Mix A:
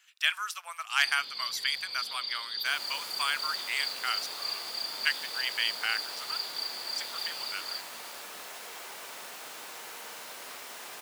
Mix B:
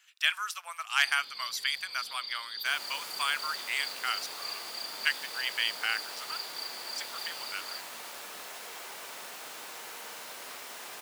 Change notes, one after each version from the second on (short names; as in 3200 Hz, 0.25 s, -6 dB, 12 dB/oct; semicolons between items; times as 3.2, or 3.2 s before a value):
first sound -4.5 dB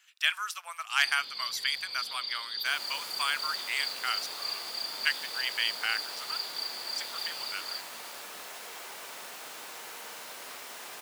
first sound +4.0 dB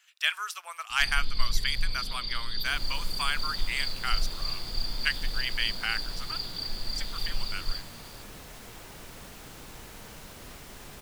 second sound: send -11.0 dB; master: remove HPF 600 Hz 12 dB/oct